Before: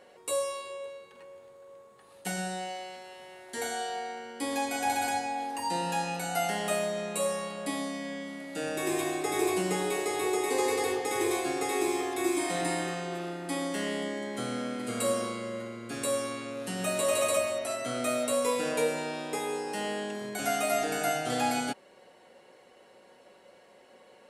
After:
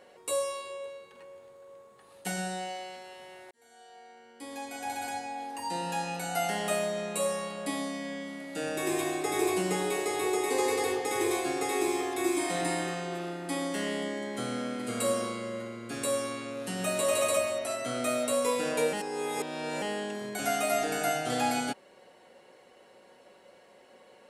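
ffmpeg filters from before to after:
-filter_complex "[0:a]asplit=4[s0][s1][s2][s3];[s0]atrim=end=3.51,asetpts=PTS-STARTPTS,afade=t=out:st=3.506:d=0.004:c=hsin[s4];[s1]atrim=start=3.51:end=18.932,asetpts=PTS-STARTPTS,afade=t=in:d=3.08[s5];[s2]atrim=start=18.928:end=19.822,asetpts=PTS-STARTPTS,areverse[s6];[s3]atrim=start=19.818[s7];[s4][s5]concat=n=2:v=0:a=1[s8];[s8][s6]acrossfade=d=0.004:c1=hsin:c2=hsin[s9];[s9][s7]acrossfade=d=0.004:c1=hsin:c2=hsin"

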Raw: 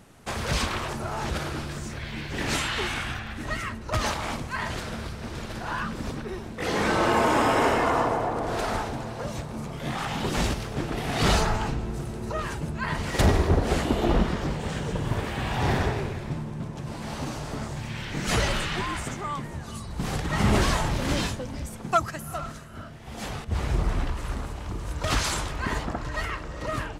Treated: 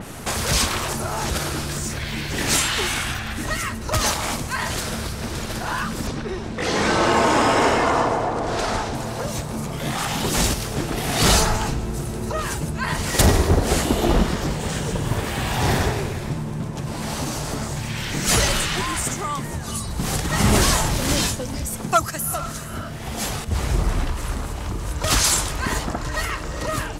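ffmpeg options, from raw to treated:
-filter_complex "[0:a]asettb=1/sr,asplit=3[s0][s1][s2];[s0]atrim=end=6.074[s3];[s1]atrim=start=6.07:end=8.95,asetpts=PTS-STARTPTS,afade=t=in:d=0.004:c=qsin,afade=t=out:st=2.876:d=0.004:c=qsin,lowpass=6200[s4];[s2]atrim=start=8.946[s5];[s3][s4]acrossfade=d=0.004:c1=hsin:c2=qsin[s6];[s6][s5]acrossfade=d=0.004:c1=qsin:c2=hsin,highshelf=f=8100:g=7.5,acompressor=mode=upward:threshold=0.0501:ratio=2.5,adynamicequalizer=threshold=0.00708:dfrequency=4300:dqfactor=0.7:tfrequency=4300:tqfactor=0.7:attack=5:release=100:ratio=0.375:range=3.5:mode=boostabove:tftype=highshelf,volume=1.58"

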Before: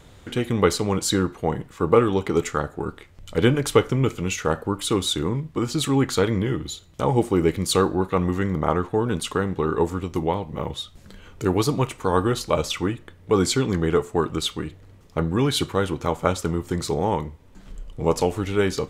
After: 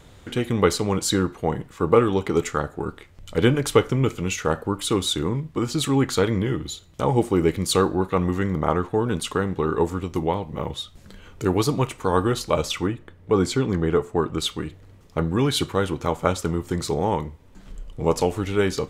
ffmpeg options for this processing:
-filter_complex "[0:a]asettb=1/sr,asplit=3[s0][s1][s2];[s0]atrim=end=12.874[s3];[s1]atrim=start=12.87:end=14.38,asetpts=PTS-STARTPTS,afade=t=in:d=0.004:c=qsin,afade=t=out:st=1.506:d=0.004:c=qsin,highshelf=f=2600:g=-7.5[s4];[s2]atrim=start=14.376[s5];[s3][s4]acrossfade=d=0.004:c1=hsin:c2=qsin[s6];[s6][s5]acrossfade=d=0.004:c1=qsin:c2=hsin"

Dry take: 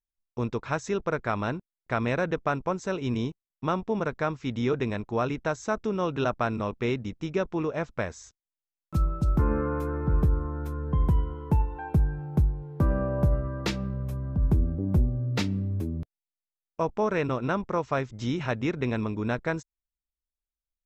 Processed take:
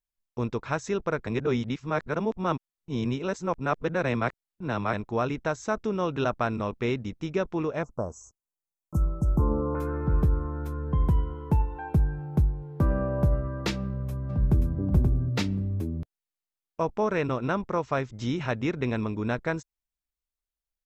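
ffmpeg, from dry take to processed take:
-filter_complex "[0:a]asettb=1/sr,asplit=3[s0][s1][s2];[s0]atrim=end=7.834[s3];[s1]atrim=start=7.83:end=9.75,asetpts=PTS-STARTPTS,afade=t=in:d=0.004:c=qsin,afade=t=out:st=1.916:d=0.004:c=qsin,asuperstop=centerf=2700:order=12:qfactor=0.58[s4];[s2]atrim=start=9.746[s5];[s3][s4]acrossfade=d=0.004:c1=hsin:c2=qsin[s6];[s6][s5]acrossfade=d=0.004:c1=qsin:c2=hsin,asplit=2[s7][s8];[s8]afade=t=in:st=13.76:d=0.01,afade=t=out:st=14.76:d=0.01,aecho=0:1:530|1060:0.630957|0.0630957[s9];[s7][s9]amix=inputs=2:normalize=0,asplit=3[s10][s11][s12];[s10]atrim=end=1.272[s13];[s11]atrim=start=1.268:end=4.932,asetpts=PTS-STARTPTS,areverse[s14];[s12]atrim=start=4.928[s15];[s13][s14]acrossfade=d=0.004:c1=hsin:c2=hsin[s16];[s16][s15]acrossfade=d=0.004:c1=hsin:c2=hsin"

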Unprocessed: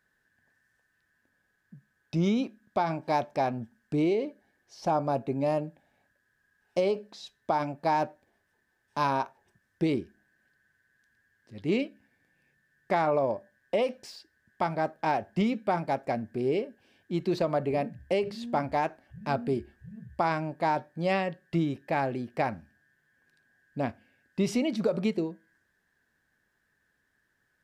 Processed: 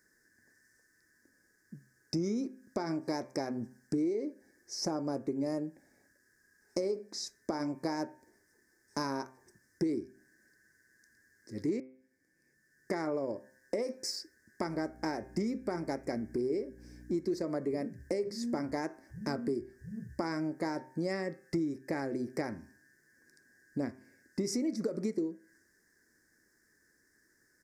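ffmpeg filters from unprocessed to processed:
-filter_complex "[0:a]asettb=1/sr,asplit=3[s0][s1][s2];[s0]atrim=end=14.684[s3];[s1]atrim=start=14.68:end=17.42,asetpts=PTS-STARTPTS,afade=t=in:d=0.004:c=qsin,afade=t=out:st=2.736:d=0.004:c=qsin,aeval=exprs='val(0)+0.00251*(sin(2*PI*60*n/s)+sin(2*PI*2*60*n/s)/2+sin(2*PI*3*60*n/s)/3+sin(2*PI*4*60*n/s)/4+sin(2*PI*5*60*n/s)/5)':c=same[s4];[s2]atrim=start=17.416[s5];[s3][s4]acrossfade=d=0.004:c1=hsin:c2=qsin[s6];[s6][s5]acrossfade=d=0.004:c1=qsin:c2=hsin,asplit=2[s7][s8];[s7]atrim=end=11.8,asetpts=PTS-STARTPTS,afade=t=out:st=11.796:d=0.004:c=hsin[s9];[s8]atrim=start=11.8,asetpts=PTS-STARTPTS,afade=t=in:d=1.3[s10];[s9][s10]concat=n=2:v=0:a=1,firequalizer=gain_entry='entry(160,0);entry(320,11);entry(720,-5);entry(2000,5);entry(2900,-22);entry(5100,13);entry(7800,12);entry(12000,9)':delay=0.05:min_phase=1,acompressor=threshold=0.0251:ratio=4,bandreject=f=130:t=h:w=4,bandreject=f=260:t=h:w=4,bandreject=f=390:t=h:w=4,bandreject=f=520:t=h:w=4,bandreject=f=650:t=h:w=4,bandreject=f=780:t=h:w=4,bandreject=f=910:t=h:w=4,bandreject=f=1040:t=h:w=4,bandreject=f=1170:t=h:w=4,bandreject=f=1300:t=h:w=4,bandreject=f=1430:t=h:w=4,bandreject=f=1560:t=h:w=4,bandreject=f=1690:t=h:w=4,bandreject=f=1820:t=h:w=4,bandreject=f=1950:t=h:w=4,bandreject=f=2080:t=h:w=4,bandreject=f=2210:t=h:w=4,bandreject=f=2340:t=h:w=4,bandreject=f=2470:t=h:w=4,bandreject=f=2600:t=h:w=4"

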